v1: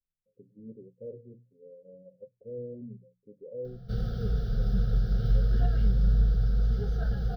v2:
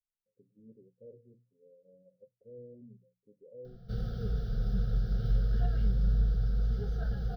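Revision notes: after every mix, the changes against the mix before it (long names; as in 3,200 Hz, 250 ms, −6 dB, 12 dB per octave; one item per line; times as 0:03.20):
speech −10.0 dB
background −4.0 dB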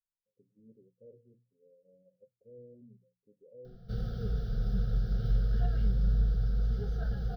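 speech −3.0 dB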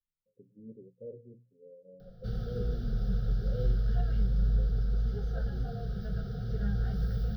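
speech +10.5 dB
background: entry −1.65 s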